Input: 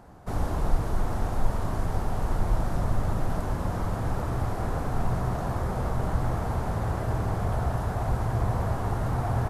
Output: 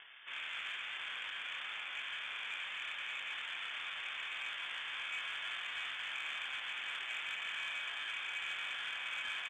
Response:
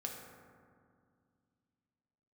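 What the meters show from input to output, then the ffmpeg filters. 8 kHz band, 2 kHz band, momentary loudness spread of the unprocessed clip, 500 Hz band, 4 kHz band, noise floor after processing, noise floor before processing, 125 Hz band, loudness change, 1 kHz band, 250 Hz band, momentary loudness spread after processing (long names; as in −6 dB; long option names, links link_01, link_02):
−11.0 dB, +4.5 dB, 3 LU, −29.0 dB, +10.5 dB, −44 dBFS, −31 dBFS, below −40 dB, −10.0 dB, −16.5 dB, below −35 dB, 2 LU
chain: -filter_complex "[0:a]lowshelf=frequency=360:gain=-2,asplit=2[link_01][link_02];[link_02]aecho=0:1:260:0.422[link_03];[link_01][link_03]amix=inputs=2:normalize=0,acompressor=mode=upward:threshold=-39dB:ratio=2.5,flanger=delay=20:depth=7.6:speed=1.5,highpass=frequency=200:poles=1,aeval=exprs='val(0)*sin(2*PI*1200*n/s)':channel_layout=same,lowpass=frequency=3100:width_type=q:width=0.5098,lowpass=frequency=3100:width_type=q:width=0.6013,lowpass=frequency=3100:width_type=q:width=0.9,lowpass=frequency=3100:width_type=q:width=2.563,afreqshift=-3600,asoftclip=type=tanh:threshold=-30.5dB,asplit=2[link_04][link_05];[link_05]adelay=170,highpass=300,lowpass=3400,asoftclip=type=hard:threshold=-39.5dB,volume=-16dB[link_06];[link_04][link_06]amix=inputs=2:normalize=0,volume=-2dB"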